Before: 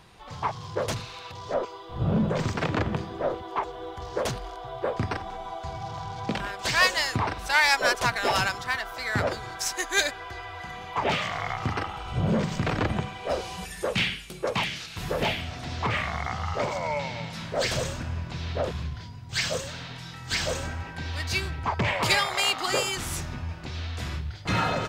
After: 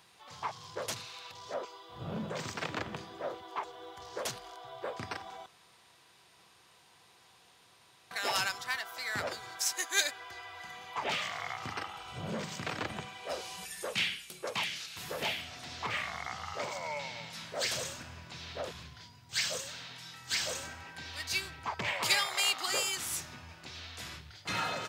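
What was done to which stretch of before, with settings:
5.46–8.11 room tone
whole clip: HPF 75 Hz; tilt +2.5 dB/oct; gain -8.5 dB

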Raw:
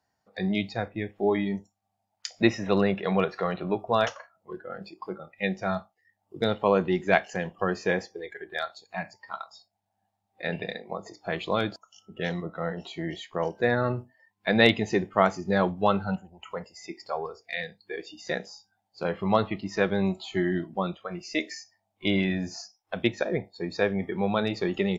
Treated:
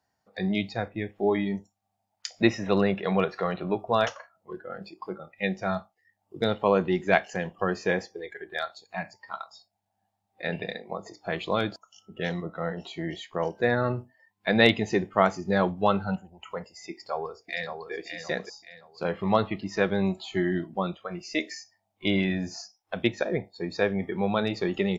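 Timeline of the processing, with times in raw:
16.91–17.92 echo throw 0.57 s, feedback 35%, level -6.5 dB

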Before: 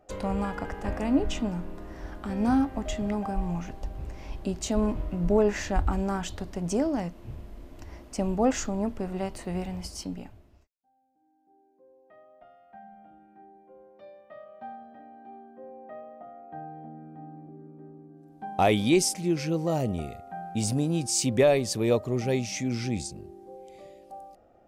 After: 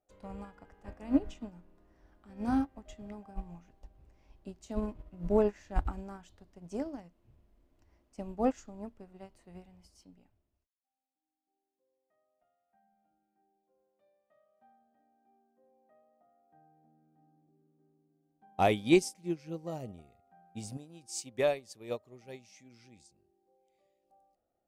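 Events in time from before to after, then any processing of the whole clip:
20.77–24.04 low shelf 410 Hz -7.5 dB
whole clip: upward expander 2.5:1, over -33 dBFS

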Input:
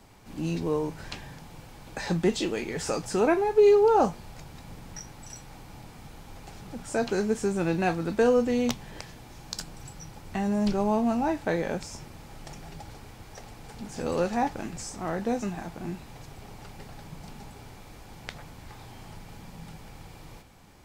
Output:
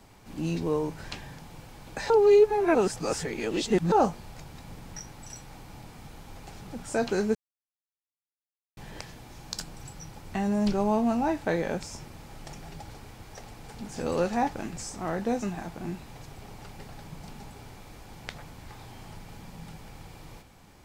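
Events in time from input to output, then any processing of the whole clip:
2.1–3.92 reverse
7.35–8.77 mute

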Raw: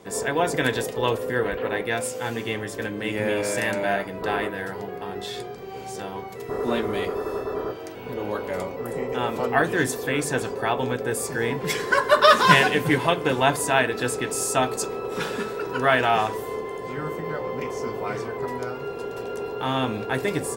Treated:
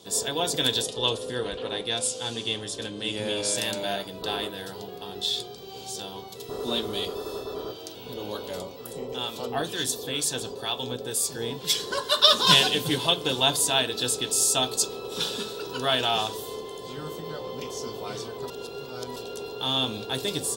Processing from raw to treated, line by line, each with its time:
0.82–3.56 steep low-pass 11000 Hz 72 dB/oct
8.59–12.47 harmonic tremolo 2.1 Hz, depth 50%, crossover 1100 Hz
18.5–19.16 reverse
whole clip: resonant high shelf 2700 Hz +9.5 dB, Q 3; gain -5.5 dB

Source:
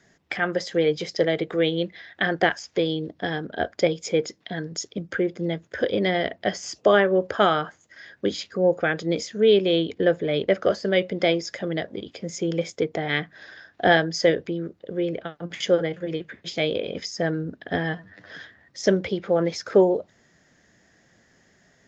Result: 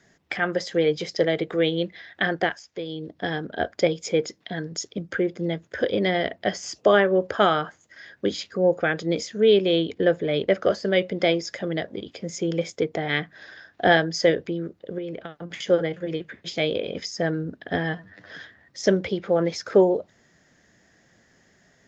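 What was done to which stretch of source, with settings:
2.25–3.27 dip -9.5 dB, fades 0.42 s
14.98–15.7 compressor, threshold -29 dBFS

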